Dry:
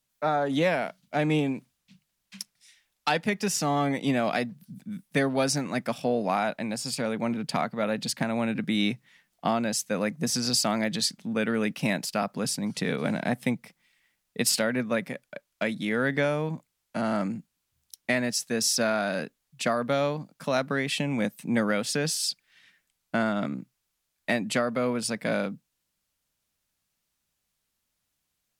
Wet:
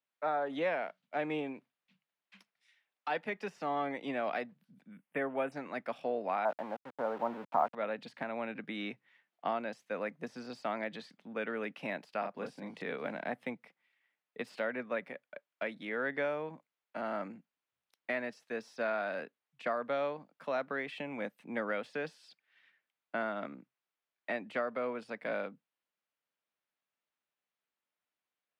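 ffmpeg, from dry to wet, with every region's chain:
ffmpeg -i in.wav -filter_complex "[0:a]asettb=1/sr,asplit=3[link_01][link_02][link_03];[link_01]atrim=end=4.914[link_04];[link_02]atrim=start=4.91:end=5.52,asetpts=PTS-STARTPTS,afade=type=in:duration=0.004:curve=qsin,afade=type=out:start_time=0.606:duration=0.004:curve=qsin,asuperstop=centerf=5100:order=8:qfactor=1.1,highshelf=frequency=8100:gain=5.5[link_05];[link_03]atrim=start=5.516[link_06];[link_04][link_05]acrossfade=duration=0.004:curve1=hsin:curve2=qsin[link_07];[link_07][link_06]acrossfade=duration=0.004:curve1=qsin:curve2=hsin,asettb=1/sr,asplit=3[link_08][link_09][link_10];[link_08]atrim=end=6.454[link_11];[link_09]atrim=start=6.45:end=7.75,asetpts=PTS-STARTPTS,afade=type=in:duration=0.004:curve=qsin,afade=type=out:start_time=1.296:duration=0.004:curve=qsin,lowpass=frequency=1400:width=0.5412,lowpass=frequency=1400:width=1.3066,equalizer=frequency=900:width=1.3:gain=11,aeval=exprs='val(0)*gte(abs(val(0)),0.0168)':channel_layout=same[link_12];[link_10]atrim=start=7.746[link_13];[link_11][link_12]acrossfade=duration=0.004:curve1=hsin:curve2=qsin[link_14];[link_14][link_13]acrossfade=duration=0.004:curve1=qsin:curve2=hsin,asettb=1/sr,asplit=3[link_15][link_16][link_17];[link_15]atrim=end=12.214[link_18];[link_16]atrim=start=12.21:end=12.82,asetpts=PTS-STARTPTS,afade=type=in:duration=0.004:curve=qsin,afade=type=out:start_time=0.606:duration=0.004:curve=qsin,agate=range=-33dB:threshold=-46dB:ratio=3:release=100:detection=peak,bandreject=frequency=1300:width=12,asplit=2[link_19][link_20];[link_20]adelay=35,volume=-4dB[link_21];[link_19][link_21]amix=inputs=2:normalize=0,atrim=end_sample=26901[link_22];[link_17]atrim=start=12.816[link_23];[link_18][link_22]acrossfade=duration=0.004:curve1=hsin:curve2=qsin[link_24];[link_24][link_23]acrossfade=duration=0.004:curve1=qsin:curve2=hsin,deesser=0.8,highpass=130,acrossover=split=320 3200:gain=0.2 1 0.1[link_25][link_26][link_27];[link_25][link_26][link_27]amix=inputs=3:normalize=0,volume=-6.5dB" out.wav

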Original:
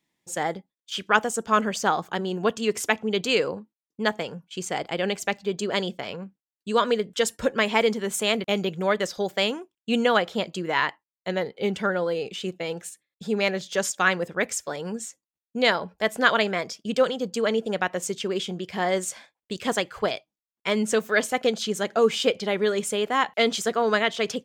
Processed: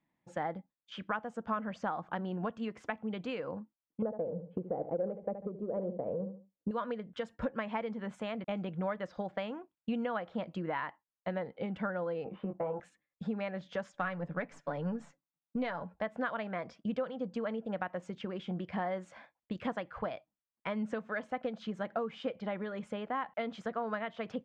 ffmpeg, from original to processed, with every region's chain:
ffmpeg -i in.wav -filter_complex "[0:a]asettb=1/sr,asplit=3[link_01][link_02][link_03];[link_01]atrim=end=4.024[link_04];[link_02]atrim=start=4.02:end=6.71,asetpts=PTS-STARTPTS,afade=type=in:duration=0.004:curve=qsin,afade=type=out:start_time=2.686:duration=0.004:curve=qsin,lowpass=frequency=490:width_type=q:width=3.8,aecho=1:1:72|144|216:0.251|0.0578|0.0133,atrim=end_sample=118629,acontrast=33[link_05];[link_03]atrim=start=6.706[link_06];[link_04][link_05]acrossfade=duration=0.004:curve1=hsin:curve2=qsin[link_07];[link_07][link_06]acrossfade=duration=0.004:curve1=qsin:curve2=hsin,asettb=1/sr,asplit=3[link_08][link_09][link_10];[link_08]atrim=end=12.244[link_11];[link_09]atrim=start=12.24:end=12.8,asetpts=PTS-STARTPTS,afade=type=in:duration=0.004:curve=qsin,afade=type=out:start_time=0.556:duration=0.004:curve=qsin,lowpass=frequency=1000:width_type=q:width=3.1,asplit=2[link_12][link_13];[link_13]adelay=20,volume=-4dB[link_14];[link_12][link_14]amix=inputs=2:normalize=0,atrim=end_sample=24696[link_15];[link_10]atrim=start=12.796[link_16];[link_11][link_15]acrossfade=duration=0.004:curve1=hsin:curve2=qsin[link_17];[link_17][link_16]acrossfade=duration=0.004:curve1=qsin:curve2=hsin,asettb=1/sr,asplit=3[link_18][link_19][link_20];[link_18]atrim=end=13.944[link_21];[link_19]atrim=start=13.94:end=15.83,asetpts=PTS-STARTPTS,afade=type=in:duration=0.004:curve=qsin,afade=type=out:start_time=1.886:duration=0.004:curve=qsin,aeval=exprs='if(lt(val(0),0),0.708*val(0),val(0))':channel_layout=same,lowshelf=frequency=120:width_type=q:width=3:gain=-7.5,aecho=1:1:7:0.39,atrim=end_sample=83349[link_22];[link_20]atrim=start=15.826[link_23];[link_21][link_22]acrossfade=duration=0.004:curve1=hsin:curve2=qsin[link_24];[link_24][link_23]acrossfade=duration=0.004:curve1=qsin:curve2=hsin,acompressor=threshold=-30dB:ratio=6,lowpass=1500,equalizer=frequency=400:width=4.9:gain=-13" out.wav

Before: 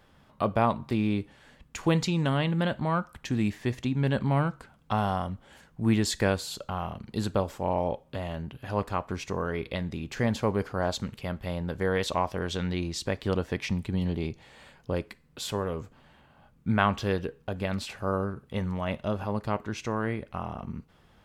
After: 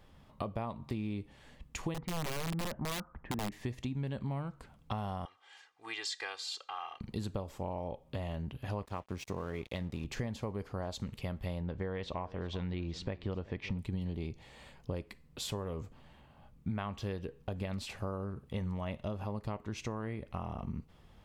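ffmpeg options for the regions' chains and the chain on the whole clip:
ffmpeg -i in.wav -filter_complex "[0:a]asettb=1/sr,asplit=3[link_01][link_02][link_03];[link_01]atrim=end=1.944[link_04];[link_02]atrim=start=1.94:end=3.52,asetpts=PTS-STARTPTS,afade=type=in:duration=0.004:curve=qsin,afade=type=out:start_time=1.576:duration=0.004:curve=qsin,lowpass=frequency=1700:width=0.5412,lowpass=frequency=1700:width=1.3066,equalizer=frequency=100:width_type=o:width=0.41:gain=-11.5,aeval=exprs='(mod(11.9*val(0)+1,2)-1)/11.9':channel_layout=same[link_05];[link_03]atrim=start=3.516[link_06];[link_04][link_05]acrossfade=duration=0.004:curve1=hsin:curve2=qsin[link_07];[link_07][link_06]acrossfade=duration=0.004:curve1=qsin:curve2=hsin,asettb=1/sr,asplit=3[link_08][link_09][link_10];[link_08]atrim=end=5.254[link_11];[link_09]atrim=start=5.25:end=7.01,asetpts=PTS-STARTPTS,afade=type=in:duration=0.004:curve=qsin,afade=type=out:start_time=1.756:duration=0.004:curve=qsin,asuperpass=centerf=2600:order=4:qfactor=0.51,aecho=1:1:2.5:0.94,atrim=end_sample=77616[link_12];[link_10]atrim=start=7.006[link_13];[link_11][link_12]acrossfade=duration=0.004:curve1=hsin:curve2=qsin[link_14];[link_14][link_13]acrossfade=duration=0.004:curve1=qsin:curve2=hsin,asettb=1/sr,asplit=3[link_15][link_16][link_17];[link_15]atrim=end=8.854[link_18];[link_16]atrim=start=8.85:end=10.05,asetpts=PTS-STARTPTS,afade=type=in:duration=0.004:curve=qsin,afade=type=out:start_time=1.196:duration=0.004:curve=qsin,highpass=60,aeval=exprs='sgn(val(0))*max(abs(val(0))-0.00473,0)':channel_layout=same[link_19];[link_17]atrim=start=10.046[link_20];[link_18][link_19]acrossfade=duration=0.004:curve1=hsin:curve2=qsin[link_21];[link_21][link_20]acrossfade=duration=0.004:curve1=qsin:curve2=hsin,asettb=1/sr,asplit=3[link_22][link_23][link_24];[link_22]atrim=end=11.614[link_25];[link_23]atrim=start=11.61:end=13.79,asetpts=PTS-STARTPTS,afade=type=in:duration=0.004:curve=qsin,afade=type=out:start_time=2.176:duration=0.004:curve=qsin,lowpass=3400,aecho=1:1:379:0.0944,atrim=end_sample=96138[link_26];[link_24]atrim=start=13.786[link_27];[link_25][link_26]acrossfade=duration=0.004:curve1=hsin:curve2=qsin[link_28];[link_28][link_27]acrossfade=duration=0.004:curve1=qsin:curve2=hsin,equalizer=frequency=1500:width_type=o:width=0.33:gain=-6,acompressor=threshold=-33dB:ratio=6,lowshelf=frequency=89:gain=8.5,volume=-2.5dB" out.wav

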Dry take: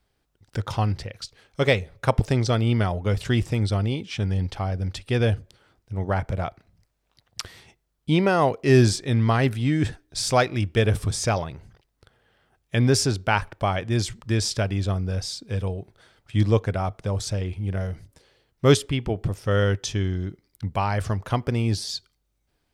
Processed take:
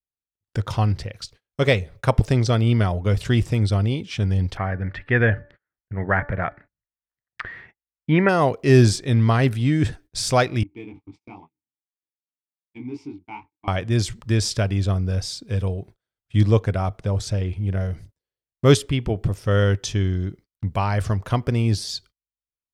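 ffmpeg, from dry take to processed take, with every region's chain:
ffmpeg -i in.wav -filter_complex "[0:a]asettb=1/sr,asplit=3[link_01][link_02][link_03];[link_01]atrim=end=4.574[link_04];[link_02]atrim=start=4.57:end=8.29,asetpts=PTS-STARTPTS,afade=type=in:duration=0.004:curve=qsin,afade=type=out:start_time=3.716:duration=0.004:curve=qsin,lowpass=frequency=1800:width_type=q:width=5.9,equalizer=frequency=81:width=2.8:gain=-7.5,bandreject=frequency=290.2:width_type=h:width=4,bandreject=frequency=580.4:width_type=h:width=4,bandreject=frequency=870.6:width_type=h:width=4,bandreject=frequency=1160.8:width_type=h:width=4,bandreject=frequency=1451:width_type=h:width=4,bandreject=frequency=1741.2:width_type=h:width=4[link_05];[link_03]atrim=start=8.286[link_06];[link_04][link_05]acrossfade=duration=0.004:curve1=hsin:curve2=qsin[link_07];[link_07][link_06]acrossfade=duration=0.004:curve1=qsin:curve2=hsin,asettb=1/sr,asplit=3[link_08][link_09][link_10];[link_08]atrim=end=10.634[link_11];[link_09]atrim=start=10.63:end=13.68,asetpts=PTS-STARTPTS,afade=type=in:duration=0.004:curve=qsin,afade=type=out:start_time=3.046:duration=0.004:curve=qsin,flanger=delay=20:depth=4.4:speed=2.4,adynamicsmooth=sensitivity=7:basefreq=2700,asplit=3[link_12][link_13][link_14];[link_12]bandpass=frequency=300:width_type=q:width=8,volume=0dB[link_15];[link_13]bandpass=frequency=870:width_type=q:width=8,volume=-6dB[link_16];[link_14]bandpass=frequency=2240:width_type=q:width=8,volume=-9dB[link_17];[link_15][link_16][link_17]amix=inputs=3:normalize=0[link_18];[link_10]atrim=start=13.676[link_19];[link_11][link_18]acrossfade=duration=0.004:curve1=hsin:curve2=qsin[link_20];[link_20][link_19]acrossfade=duration=0.004:curve1=qsin:curve2=hsin,asettb=1/sr,asplit=3[link_21][link_22][link_23];[link_21]atrim=end=16.964[link_24];[link_22]atrim=start=16.96:end=17.91,asetpts=PTS-STARTPTS,afade=type=in:duration=0.004:curve=qsin,afade=type=out:start_time=0.946:duration=0.004:curve=qsin,highshelf=frequency=6100:gain=-5,bandreject=frequency=1100:width=22[link_25];[link_23]atrim=start=17.906[link_26];[link_24][link_25]acrossfade=duration=0.004:curve1=hsin:curve2=qsin[link_27];[link_27][link_26]acrossfade=duration=0.004:curve1=qsin:curve2=hsin,agate=range=-35dB:threshold=-46dB:ratio=16:detection=peak,lowshelf=frequency=190:gain=3.5,bandreject=frequency=830:width=18,volume=1dB" out.wav

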